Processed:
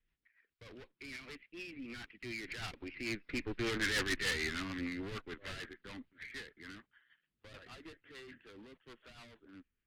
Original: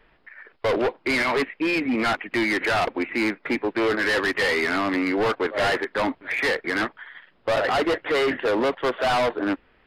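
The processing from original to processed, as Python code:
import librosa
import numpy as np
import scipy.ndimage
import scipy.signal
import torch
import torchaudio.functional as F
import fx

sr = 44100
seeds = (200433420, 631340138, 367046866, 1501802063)

y = fx.doppler_pass(x, sr, speed_mps=17, closest_m=9.0, pass_at_s=3.9)
y = fx.rotary(y, sr, hz=6.7)
y = fx.cheby_harmonics(y, sr, harmonics=(4, 6), levels_db=(-14, -13), full_scale_db=-12.0)
y = fx.tone_stack(y, sr, knobs='6-0-2')
y = y * 10.0 ** (11.5 / 20.0)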